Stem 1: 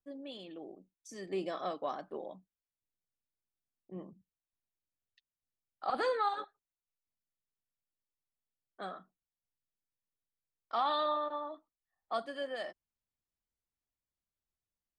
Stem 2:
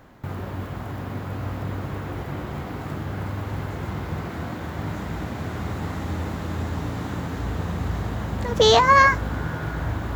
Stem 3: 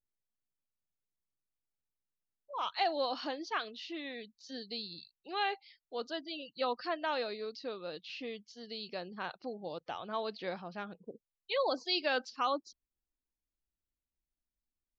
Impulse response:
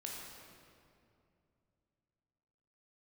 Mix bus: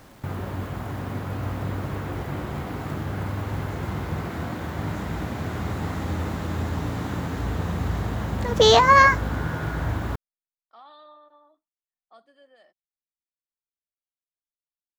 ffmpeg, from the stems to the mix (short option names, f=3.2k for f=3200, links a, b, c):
-filter_complex "[0:a]volume=-17dB[a];[1:a]acrusher=bits=8:mix=0:aa=0.000001,volume=0.5dB[b];[a][b]amix=inputs=2:normalize=0"